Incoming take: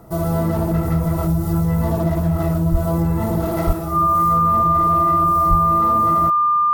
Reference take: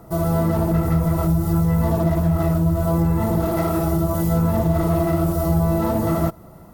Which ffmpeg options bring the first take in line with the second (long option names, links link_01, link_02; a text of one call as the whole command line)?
ffmpeg -i in.wav -filter_complex "[0:a]bandreject=frequency=1200:width=30,asplit=3[link_01][link_02][link_03];[link_01]afade=type=out:start_time=2.71:duration=0.02[link_04];[link_02]highpass=frequency=140:width=0.5412,highpass=frequency=140:width=1.3066,afade=type=in:start_time=2.71:duration=0.02,afade=type=out:start_time=2.83:duration=0.02[link_05];[link_03]afade=type=in:start_time=2.83:duration=0.02[link_06];[link_04][link_05][link_06]amix=inputs=3:normalize=0,asplit=3[link_07][link_08][link_09];[link_07]afade=type=out:start_time=3.66:duration=0.02[link_10];[link_08]highpass=frequency=140:width=0.5412,highpass=frequency=140:width=1.3066,afade=type=in:start_time=3.66:duration=0.02,afade=type=out:start_time=3.78:duration=0.02[link_11];[link_09]afade=type=in:start_time=3.78:duration=0.02[link_12];[link_10][link_11][link_12]amix=inputs=3:normalize=0,asplit=3[link_13][link_14][link_15];[link_13]afade=type=out:start_time=5.49:duration=0.02[link_16];[link_14]highpass=frequency=140:width=0.5412,highpass=frequency=140:width=1.3066,afade=type=in:start_time=5.49:duration=0.02,afade=type=out:start_time=5.61:duration=0.02[link_17];[link_15]afade=type=in:start_time=5.61:duration=0.02[link_18];[link_16][link_17][link_18]amix=inputs=3:normalize=0,asetnsamples=nb_out_samples=441:pad=0,asendcmd='3.73 volume volume 5dB',volume=0dB" out.wav